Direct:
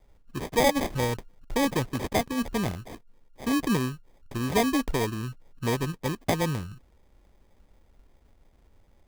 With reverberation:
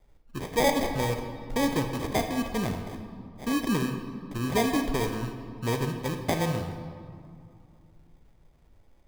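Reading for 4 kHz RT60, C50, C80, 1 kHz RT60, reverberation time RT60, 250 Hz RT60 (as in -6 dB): 1.4 s, 6.0 dB, 8.0 dB, 2.5 s, 2.4 s, 3.0 s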